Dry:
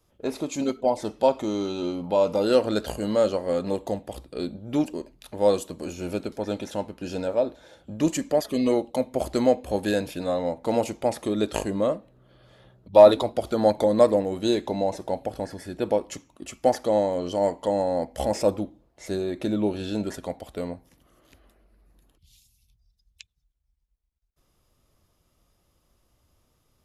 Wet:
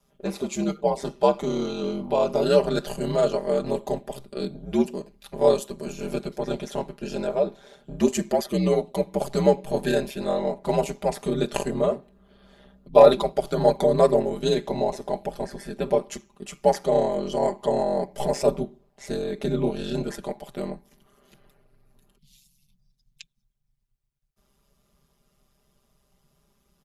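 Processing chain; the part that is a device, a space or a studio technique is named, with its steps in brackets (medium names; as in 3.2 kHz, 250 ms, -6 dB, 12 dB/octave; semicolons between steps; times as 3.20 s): ring-modulated robot voice (ring modulator 68 Hz; comb 5 ms, depth 79%); trim +1.5 dB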